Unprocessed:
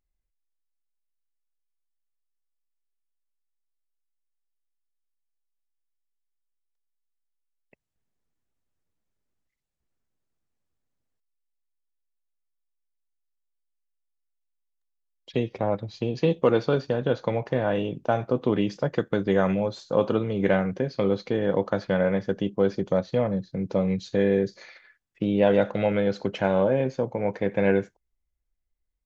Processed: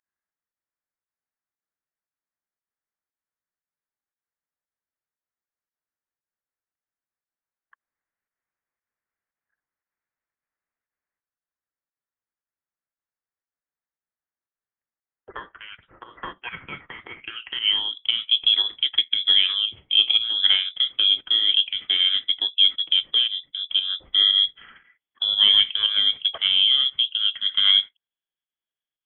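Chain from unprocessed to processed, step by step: high-pass sweep 2000 Hz -> 350 Hz, 17.07–18.05; inverted band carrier 3700 Hz; pump 116 bpm, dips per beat 1, -9 dB, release 0.12 s

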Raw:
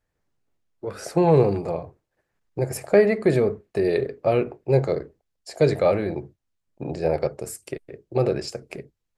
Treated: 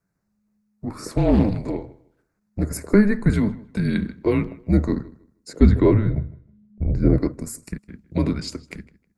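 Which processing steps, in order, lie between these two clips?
LFO notch square 0.45 Hz 240–3400 Hz; 5.53–7.18 RIAA curve playback; frequency shift -210 Hz; on a send: darkening echo 0.157 s, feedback 22%, low-pass 4600 Hz, level -20 dB; 1.12–2.65 on the sum: Doppler distortion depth 0.41 ms; gain +1.5 dB

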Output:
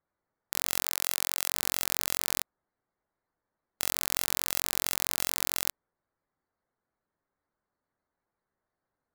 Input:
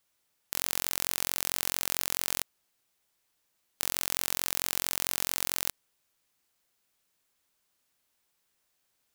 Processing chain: Wiener smoothing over 15 samples; spectral gate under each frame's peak -15 dB strong; 0.85–1.52 HPF 530 Hz 12 dB/oct; gain +1 dB

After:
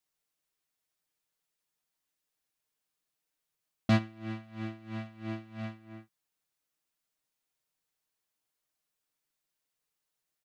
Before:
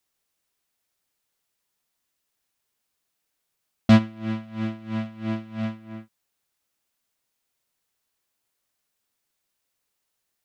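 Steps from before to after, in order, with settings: comb 6.5 ms, depth 46%; gain -8 dB

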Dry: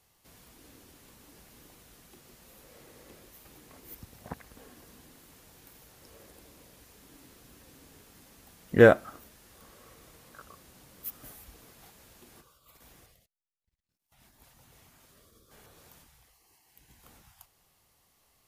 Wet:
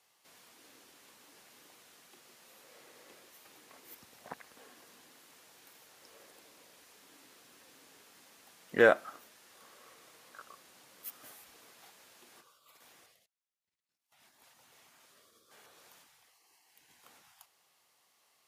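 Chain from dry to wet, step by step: weighting filter A; in parallel at -1 dB: limiter -14 dBFS, peak gain reduction 8 dB; on the sum: gain -6.5 dB

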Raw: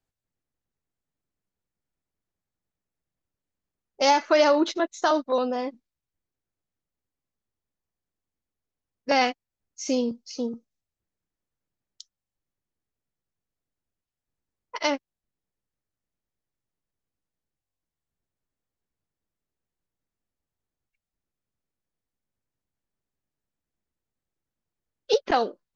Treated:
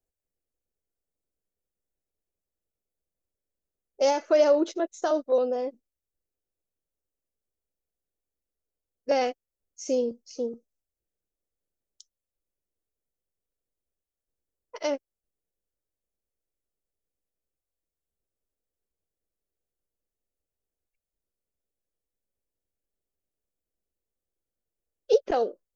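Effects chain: graphic EQ 125/250/500/1000/2000/4000 Hz -10/-5/+6/-10/-7/-10 dB

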